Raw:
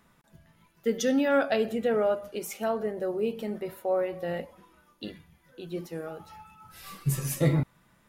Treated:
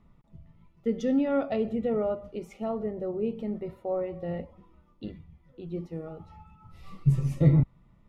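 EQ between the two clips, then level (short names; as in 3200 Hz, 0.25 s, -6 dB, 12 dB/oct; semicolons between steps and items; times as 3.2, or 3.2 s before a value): Butterworth band-stop 1600 Hz, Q 4.5; RIAA curve playback; high shelf 12000 Hz -11 dB; -5.5 dB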